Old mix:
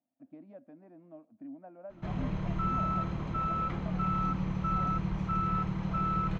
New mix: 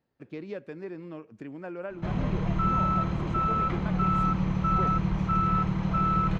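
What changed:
speech: remove two resonant band-passes 420 Hz, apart 1.3 oct; background +5.5 dB

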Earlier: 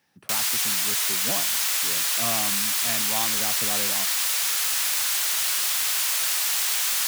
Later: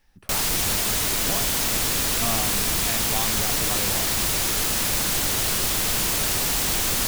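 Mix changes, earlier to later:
speech: remove high-pass 120 Hz 24 dB/octave; background: remove high-pass 1.2 kHz 12 dB/octave

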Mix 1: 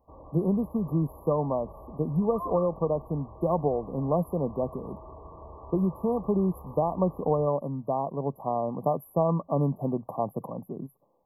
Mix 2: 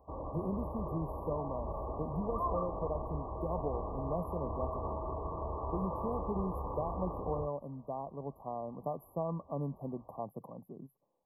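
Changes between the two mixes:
speech -11.5 dB; first sound +7.0 dB

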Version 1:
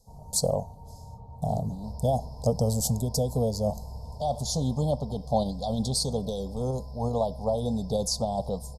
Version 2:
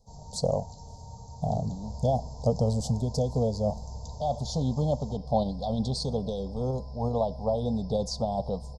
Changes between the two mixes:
speech: add distance through air 120 m; first sound: remove Chebyshev low-pass 2.3 kHz, order 3

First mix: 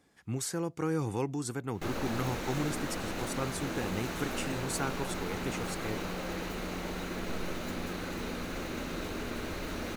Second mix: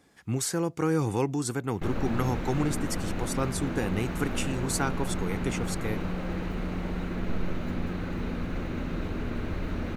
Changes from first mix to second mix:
speech +5.5 dB; background: add tone controls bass +10 dB, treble -13 dB

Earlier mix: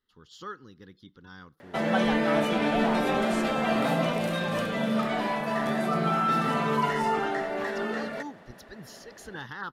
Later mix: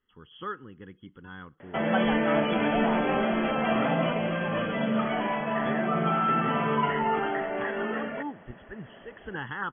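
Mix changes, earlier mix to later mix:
speech +4.0 dB; master: add brick-wall FIR low-pass 3.4 kHz

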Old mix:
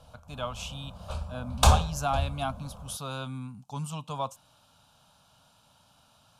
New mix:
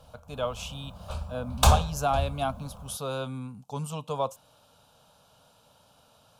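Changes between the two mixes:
speech: add peaking EQ 470 Hz +11.5 dB 0.73 oct; master: remove low-pass 12 kHz 12 dB/octave

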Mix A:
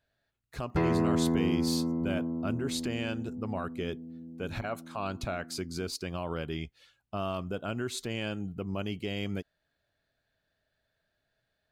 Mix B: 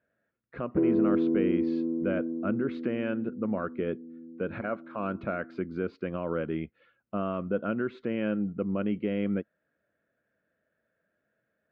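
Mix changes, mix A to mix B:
background: add band-pass filter 340 Hz, Q 2.7; master: add cabinet simulation 110–2300 Hz, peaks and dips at 110 Hz -4 dB, 210 Hz +9 dB, 320 Hz +6 dB, 510 Hz +9 dB, 810 Hz -6 dB, 1.4 kHz +5 dB

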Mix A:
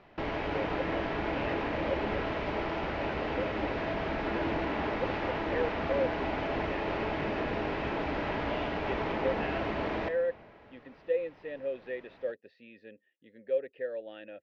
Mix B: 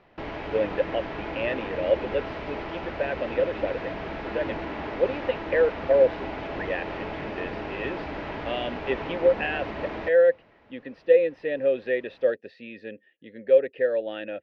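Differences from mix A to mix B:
speech +12.0 dB; background: send -10.5 dB

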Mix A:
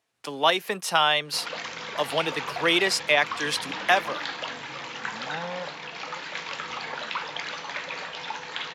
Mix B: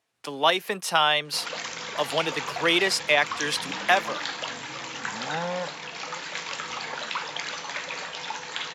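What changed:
first sound: remove low-pass 4.5 kHz 12 dB/octave; second sound +4.5 dB

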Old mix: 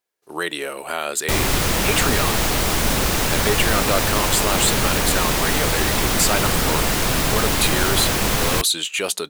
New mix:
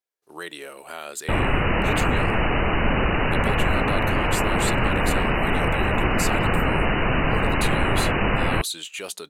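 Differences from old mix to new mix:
speech -10.0 dB; background: add brick-wall FIR low-pass 3 kHz

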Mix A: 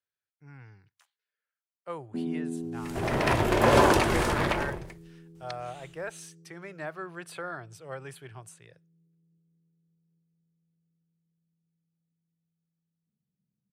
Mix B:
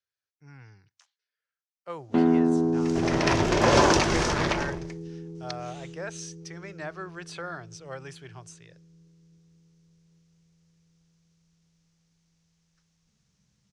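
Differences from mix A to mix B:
first sound: remove ladder band-pass 230 Hz, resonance 20%; master: add resonant low-pass 5.9 kHz, resonance Q 3.3

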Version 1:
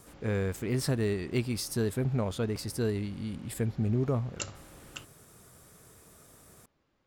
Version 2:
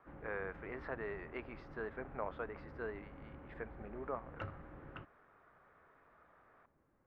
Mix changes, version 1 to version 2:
speech: add high-pass 820 Hz 12 dB/octave; master: add low-pass 1.8 kHz 24 dB/octave

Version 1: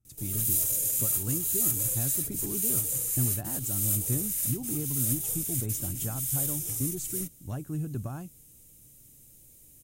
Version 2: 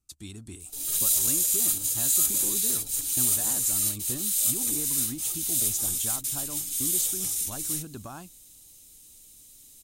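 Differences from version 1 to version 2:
background: entry +0.55 s; master: add graphic EQ 125/500/1000/4000/8000 Hz -12/-3/+5/+12/+4 dB

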